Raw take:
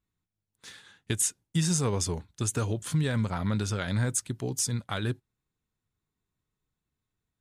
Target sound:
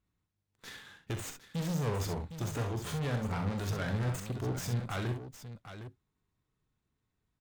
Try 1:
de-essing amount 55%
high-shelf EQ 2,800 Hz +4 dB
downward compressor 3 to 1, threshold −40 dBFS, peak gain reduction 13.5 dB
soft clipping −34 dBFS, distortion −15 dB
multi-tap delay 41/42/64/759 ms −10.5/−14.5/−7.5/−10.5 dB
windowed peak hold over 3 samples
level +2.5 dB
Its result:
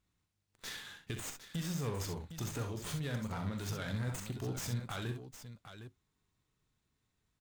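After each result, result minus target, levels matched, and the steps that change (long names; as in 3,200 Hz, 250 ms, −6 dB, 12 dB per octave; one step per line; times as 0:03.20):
downward compressor: peak gain reduction +13.5 dB; 4,000 Hz band +4.5 dB
remove: downward compressor 3 to 1, threshold −40 dBFS, peak gain reduction 13.5 dB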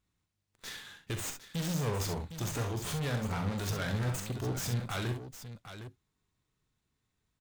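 4,000 Hz band +4.0 dB
change: high-shelf EQ 2,800 Hz −5 dB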